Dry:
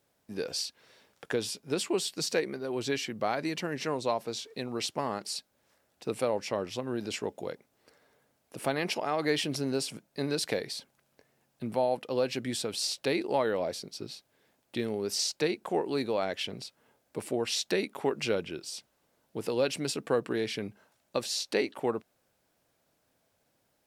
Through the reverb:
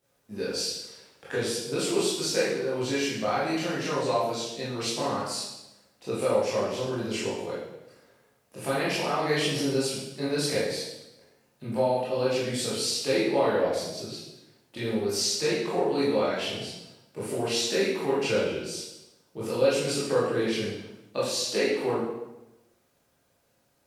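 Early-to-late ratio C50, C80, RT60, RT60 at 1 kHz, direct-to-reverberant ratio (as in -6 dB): 0.0 dB, 4.0 dB, 0.95 s, 0.90 s, -9.5 dB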